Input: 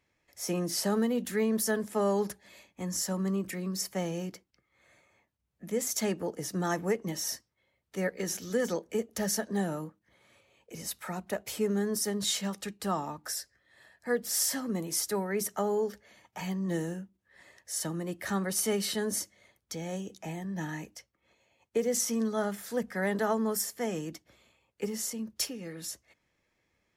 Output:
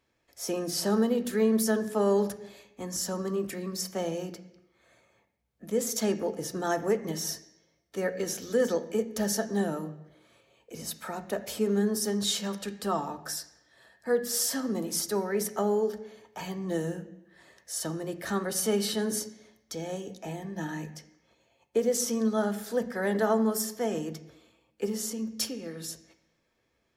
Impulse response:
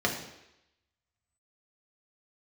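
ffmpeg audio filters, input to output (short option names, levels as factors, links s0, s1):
-filter_complex "[0:a]asplit=2[s0][s1];[1:a]atrim=start_sample=2205,asetrate=42336,aresample=44100,lowpass=7800[s2];[s1][s2]afir=irnorm=-1:irlink=0,volume=0.15[s3];[s0][s3]amix=inputs=2:normalize=0"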